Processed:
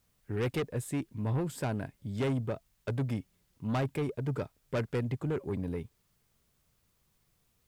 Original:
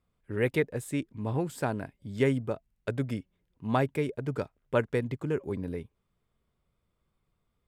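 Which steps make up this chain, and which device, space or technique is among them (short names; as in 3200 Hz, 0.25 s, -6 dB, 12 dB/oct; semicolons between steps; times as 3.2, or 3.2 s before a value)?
open-reel tape (soft clip -27.5 dBFS, distortion -9 dB; bell 120 Hz +4 dB 1.16 oct; white noise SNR 41 dB)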